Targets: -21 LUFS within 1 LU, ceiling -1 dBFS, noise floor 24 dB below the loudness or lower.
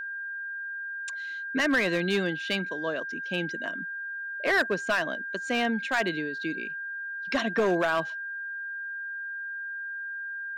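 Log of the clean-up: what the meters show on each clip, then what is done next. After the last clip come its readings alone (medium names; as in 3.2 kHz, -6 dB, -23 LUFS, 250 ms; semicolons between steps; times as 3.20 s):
clipped samples 0.7%; clipping level -19.0 dBFS; steady tone 1.6 kHz; tone level -33 dBFS; loudness -29.5 LUFS; peak level -19.0 dBFS; loudness target -21.0 LUFS
-> clip repair -19 dBFS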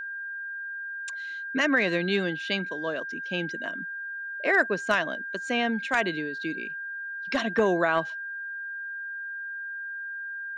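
clipped samples 0.0%; steady tone 1.6 kHz; tone level -33 dBFS
-> band-stop 1.6 kHz, Q 30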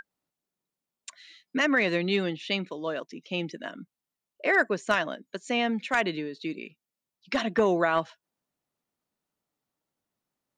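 steady tone not found; loudness -27.5 LUFS; peak level -9.0 dBFS; loudness target -21.0 LUFS
-> trim +6.5 dB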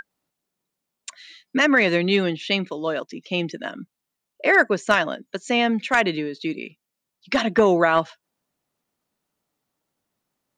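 loudness -21.0 LUFS; peak level -2.5 dBFS; noise floor -83 dBFS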